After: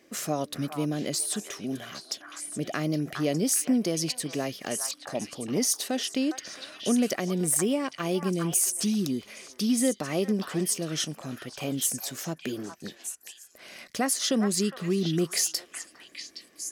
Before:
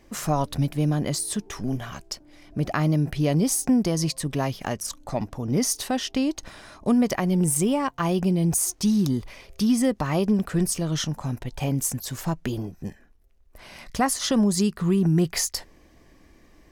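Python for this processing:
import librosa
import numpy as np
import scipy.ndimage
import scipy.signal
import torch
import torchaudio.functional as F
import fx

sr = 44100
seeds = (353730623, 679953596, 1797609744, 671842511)

p1 = fx.peak_eq(x, sr, hz=920.0, db=-11.0, octaves=0.5)
p2 = p1 + fx.echo_stepped(p1, sr, ms=409, hz=1200.0, octaves=1.4, feedback_pct=70, wet_db=-2, dry=0)
p3 = fx.dynamic_eq(p2, sr, hz=1300.0, q=0.98, threshold_db=-43.0, ratio=4.0, max_db=-4)
y = scipy.signal.sosfilt(scipy.signal.butter(2, 270.0, 'highpass', fs=sr, output='sos'), p3)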